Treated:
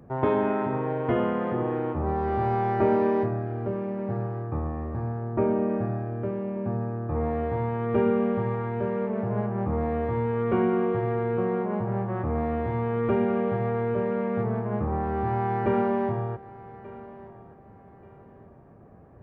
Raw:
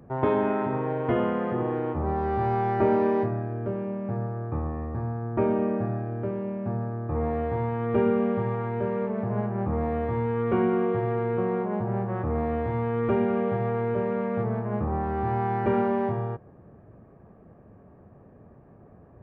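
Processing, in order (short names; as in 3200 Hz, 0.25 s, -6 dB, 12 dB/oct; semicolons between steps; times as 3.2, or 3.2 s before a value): 5.2–5.7 high shelf 3100 Hz -9.5 dB; on a send: thinning echo 1.184 s, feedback 33%, high-pass 220 Hz, level -17.5 dB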